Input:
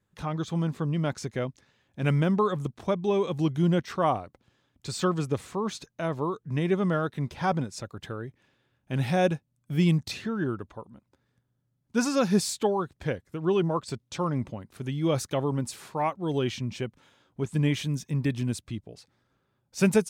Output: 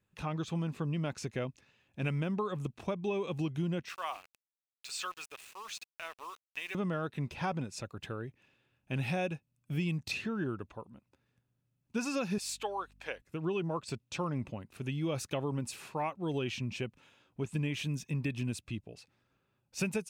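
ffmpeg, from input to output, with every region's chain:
ffmpeg -i in.wav -filter_complex "[0:a]asettb=1/sr,asplit=3[link_01][link_02][link_03];[link_01]atrim=end=3.894[link_04];[link_02]atrim=start=3.89:end=6.75,asetpts=PTS-STARTPTS,afade=type=in:duration=0.004:curve=qsin,afade=type=out:start_time=2.856:duration=0.004:curve=qsin,highpass=1400,aeval=exprs='val(0)*gte(abs(val(0)),0.00501)':channel_layout=same,acompressor=mode=upward:threshold=-51dB:ratio=2.5:attack=3.2:release=140:knee=2.83:detection=peak[link_05];[link_03]atrim=start=6.746[link_06];[link_04][link_05]acrossfade=duration=0.004:curve1=hsin:curve2=qsin[link_07];[link_07][link_06]acrossfade=duration=0.004:curve1=qsin:curve2=hsin,asettb=1/sr,asplit=3[link_08][link_09][link_10];[link_08]atrim=end=12.384[link_11];[link_09]atrim=start=12.38:end=13.22,asetpts=PTS-STARTPTS,afade=type=in:duration=0.004:curve=qsin,afade=type=out:start_time=0.836:duration=0.004:curve=qsin,highpass=690,aeval=exprs='val(0)+0.00126*(sin(2*PI*50*n/s)+sin(2*PI*2*50*n/s)/2+sin(2*PI*3*50*n/s)/3+sin(2*PI*4*50*n/s)/4+sin(2*PI*5*50*n/s)/5)':channel_layout=same[link_12];[link_10]atrim=start=13.216[link_13];[link_11][link_12]acrossfade=duration=0.004:curve1=hsin:curve2=qsin[link_14];[link_14][link_13]acrossfade=duration=0.004:curve1=qsin:curve2=hsin,equalizer=frequency=2600:width=6.5:gain=11.5,acompressor=threshold=-26dB:ratio=6,volume=-4dB" out.wav

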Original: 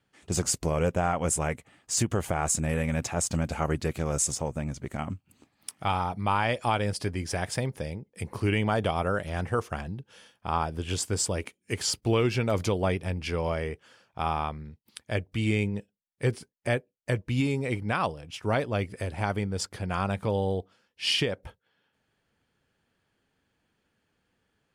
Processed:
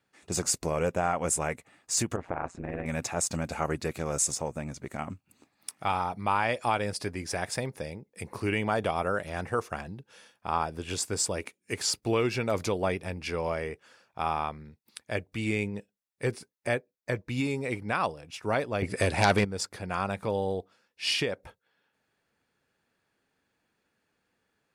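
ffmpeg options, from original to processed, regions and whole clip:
ffmpeg -i in.wav -filter_complex "[0:a]asettb=1/sr,asplit=3[link_01][link_02][link_03];[link_01]atrim=end=2.164[link_04];[link_02]atrim=start=2.16:end=2.86,asetpts=PTS-STARTPTS,afade=type=in:duration=0.004:curve=qsin,afade=type=out:start_time=0.696:duration=0.004:curve=qsin,lowpass=1800,tremolo=f=180:d=0.947[link_05];[link_03]atrim=start=2.856[link_06];[link_04][link_05]acrossfade=duration=0.004:curve1=hsin:curve2=qsin[link_07];[link_07][link_06]acrossfade=duration=0.004:curve1=qsin:curve2=hsin,asettb=1/sr,asplit=3[link_08][link_09][link_10];[link_08]atrim=end=16.774[link_11];[link_09]atrim=start=16.77:end=17.29,asetpts=PTS-STARTPTS,afade=type=in:duration=0.004:curve=qsin,afade=type=out:start_time=0.516:duration=0.004:curve=qsin,equalizer=frequency=9500:width_type=o:width=0.45:gain=-10,bandreject=frequency=2800:width=9.2[link_12];[link_10]atrim=start=17.286[link_13];[link_11][link_12]acrossfade=duration=0.004:curve1=hsin:curve2=qsin[link_14];[link_14][link_13]acrossfade=duration=0.004:curve1=qsin:curve2=hsin,asettb=1/sr,asplit=3[link_15][link_16][link_17];[link_15]atrim=end=18.824[link_18];[link_16]atrim=start=18.82:end=19.45,asetpts=PTS-STARTPTS,afade=type=in:duration=0.004:curve=qsin,afade=type=out:start_time=0.626:duration=0.004:curve=qsin,lowpass=frequency=11000:width=0.5412,lowpass=frequency=11000:width=1.3066,aeval=exprs='0.2*sin(PI/2*2.24*val(0)/0.2)':channel_layout=same,adynamicequalizer=threshold=0.0178:dfrequency=1800:dqfactor=0.7:tfrequency=1800:tqfactor=0.7:attack=5:release=100:ratio=0.375:range=2:mode=boostabove:tftype=highshelf[link_19];[link_17]atrim=start=19.446[link_20];[link_18][link_19]acrossfade=duration=0.004:curve1=hsin:curve2=qsin[link_21];[link_21][link_20]acrossfade=duration=0.004:curve1=qsin:curve2=hsin,lowshelf=frequency=160:gain=-10,bandreject=frequency=3100:width=9.2" out.wav

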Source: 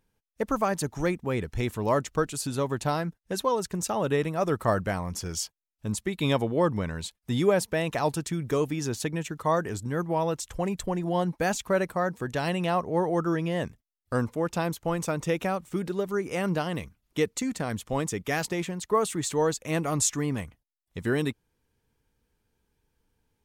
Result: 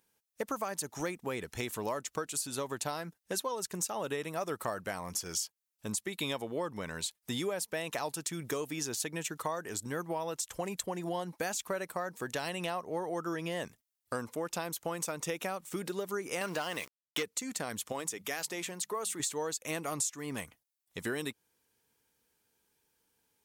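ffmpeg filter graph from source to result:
ffmpeg -i in.wav -filter_complex "[0:a]asettb=1/sr,asplit=3[link_01][link_02][link_03];[link_01]atrim=end=16.414[link_04];[link_02]atrim=start=16.41:end=17.23,asetpts=PTS-STARTPTS,afade=type=in:duration=0.004:curve=qsin,afade=type=out:start_time=0.816:duration=0.004:curve=qsin,asplit=2[link_05][link_06];[link_06]highpass=frequency=720:poles=1,volume=16dB,asoftclip=type=tanh:threshold=-13.5dB[link_07];[link_05][link_07]amix=inputs=2:normalize=0,lowpass=frequency=5000:poles=1,volume=-6dB,aeval=exprs='val(0)*gte(abs(val(0)),0.00794)':channel_layout=same[link_08];[link_03]atrim=start=17.226[link_09];[link_04][link_08]acrossfade=duration=0.004:curve1=hsin:curve2=qsin[link_10];[link_10][link_09]acrossfade=duration=0.004:curve1=qsin:curve2=hsin,asettb=1/sr,asplit=3[link_11][link_12][link_13];[link_11]atrim=end=17.924[link_14];[link_12]atrim=start=17.92:end=19.2,asetpts=PTS-STARTPTS,afade=type=in:duration=0.004:curve=qsin,afade=type=out:start_time=1.276:duration=0.004:curve=qsin,lowshelf=frequency=120:gain=-11.5,bandreject=frequency=50:width_type=h:width=6,bandreject=frequency=100:width_type=h:width=6,bandreject=frequency=150:width_type=h:width=6,bandreject=frequency=200:width_type=h:width=6,acompressor=threshold=-37dB:ratio=1.5:attack=3.2:release=140:knee=1:detection=peak[link_15];[link_13]atrim=start=19.196[link_16];[link_14][link_15]acrossfade=duration=0.004:curve1=hsin:curve2=qsin[link_17];[link_17][link_16]acrossfade=duration=0.004:curve1=qsin:curve2=hsin,highpass=frequency=400:poles=1,highshelf=frequency=4800:gain=9.5,acompressor=threshold=-32dB:ratio=6" out.wav

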